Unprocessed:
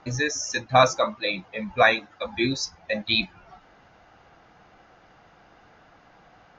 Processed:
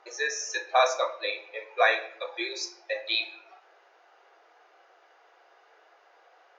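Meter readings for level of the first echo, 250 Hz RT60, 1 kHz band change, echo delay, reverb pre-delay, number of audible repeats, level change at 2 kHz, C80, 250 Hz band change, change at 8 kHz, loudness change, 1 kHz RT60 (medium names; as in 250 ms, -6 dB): no echo, 0.90 s, -4.0 dB, no echo, 4 ms, no echo, -3.5 dB, 15.0 dB, -17.0 dB, no reading, -4.5 dB, 0.55 s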